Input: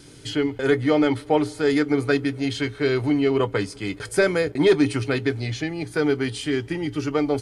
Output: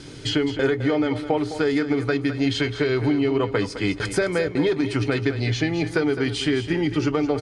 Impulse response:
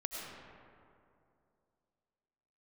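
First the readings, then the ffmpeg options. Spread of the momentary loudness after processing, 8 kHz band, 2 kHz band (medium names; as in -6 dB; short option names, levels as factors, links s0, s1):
3 LU, 0.0 dB, 0.0 dB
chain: -af "lowpass=6100,alimiter=limit=0.211:level=0:latency=1:release=406,acompressor=threshold=0.0562:ratio=6,aecho=1:1:211:0.282,volume=2.24"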